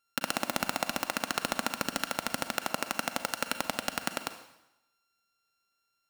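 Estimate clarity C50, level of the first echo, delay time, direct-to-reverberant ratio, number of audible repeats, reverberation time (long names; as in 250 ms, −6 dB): 10.0 dB, no echo audible, no echo audible, 9.0 dB, no echo audible, 0.90 s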